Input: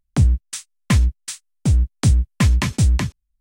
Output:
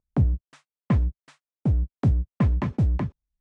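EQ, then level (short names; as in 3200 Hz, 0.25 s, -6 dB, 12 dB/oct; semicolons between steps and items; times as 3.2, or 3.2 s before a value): band-pass 660 Hz, Q 0.7; tilt -3.5 dB/oct; -4.0 dB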